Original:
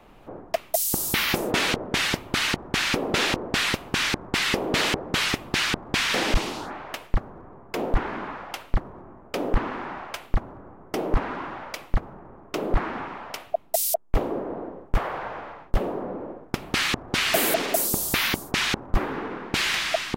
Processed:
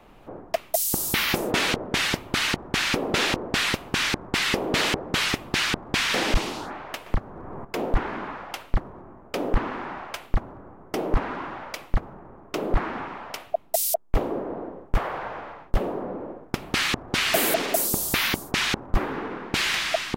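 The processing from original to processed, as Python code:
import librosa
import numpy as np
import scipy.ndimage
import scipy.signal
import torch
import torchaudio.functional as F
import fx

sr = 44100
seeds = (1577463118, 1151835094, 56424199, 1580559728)

y = fx.band_squash(x, sr, depth_pct=100, at=(7.06, 7.65))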